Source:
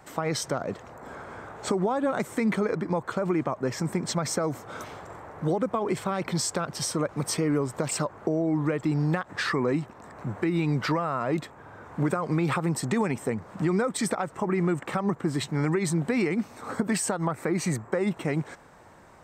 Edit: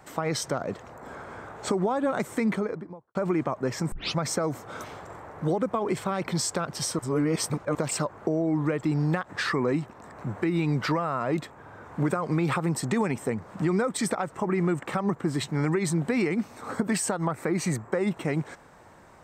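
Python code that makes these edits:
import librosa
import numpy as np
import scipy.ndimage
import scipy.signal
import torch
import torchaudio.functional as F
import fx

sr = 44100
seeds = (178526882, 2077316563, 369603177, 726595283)

y = fx.studio_fade_out(x, sr, start_s=2.37, length_s=0.78)
y = fx.edit(y, sr, fx.tape_start(start_s=3.92, length_s=0.26),
    fx.reverse_span(start_s=6.99, length_s=0.76), tone=tone)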